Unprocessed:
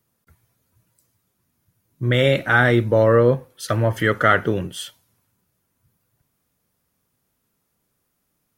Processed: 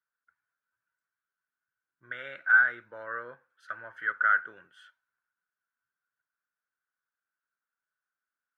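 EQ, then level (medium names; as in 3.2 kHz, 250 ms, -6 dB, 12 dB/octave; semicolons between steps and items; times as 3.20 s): band-pass filter 1.5 kHz, Q 11; 0.0 dB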